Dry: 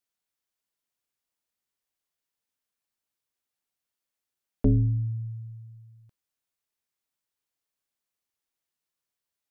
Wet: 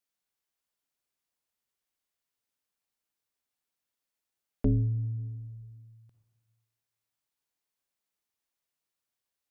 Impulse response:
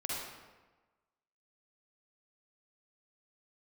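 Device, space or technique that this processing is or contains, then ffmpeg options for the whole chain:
ducked reverb: -filter_complex "[0:a]asplit=3[link_01][link_02][link_03];[1:a]atrim=start_sample=2205[link_04];[link_02][link_04]afir=irnorm=-1:irlink=0[link_05];[link_03]apad=whole_len=419205[link_06];[link_05][link_06]sidechaincompress=threshold=-38dB:ratio=12:attack=16:release=429,volume=-4.5dB[link_07];[link_01][link_07]amix=inputs=2:normalize=0,volume=-4.5dB"

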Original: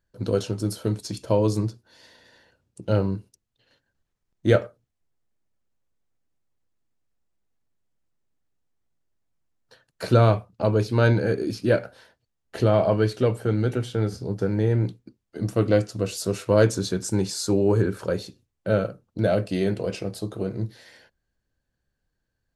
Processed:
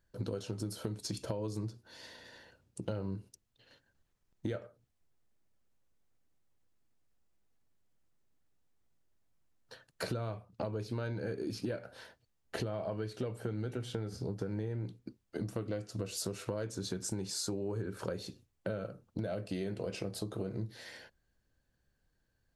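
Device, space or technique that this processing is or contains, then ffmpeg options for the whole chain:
serial compression, peaks first: -af "acompressor=threshold=-29dB:ratio=6,acompressor=threshold=-39dB:ratio=2,volume=1dB"

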